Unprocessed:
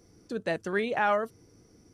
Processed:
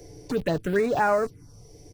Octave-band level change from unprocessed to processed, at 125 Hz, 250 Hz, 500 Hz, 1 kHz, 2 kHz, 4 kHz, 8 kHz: +10.0 dB, +6.5 dB, +5.5 dB, +3.0 dB, +0.5 dB, +0.5 dB, n/a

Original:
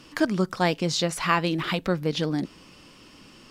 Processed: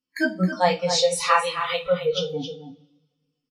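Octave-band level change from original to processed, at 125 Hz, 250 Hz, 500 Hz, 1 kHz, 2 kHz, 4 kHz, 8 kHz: -3.0, -3.0, +5.5, +5.0, +2.5, +3.5, +5.0 dB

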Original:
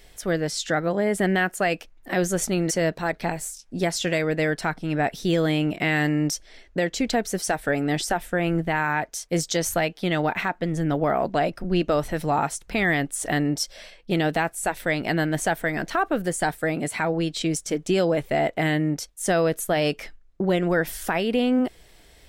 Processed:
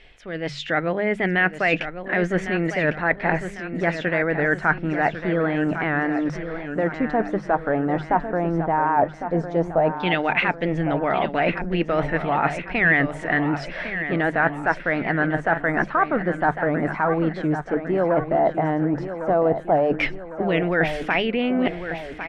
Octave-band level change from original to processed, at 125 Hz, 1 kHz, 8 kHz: 0.0 dB, +4.0 dB, under -20 dB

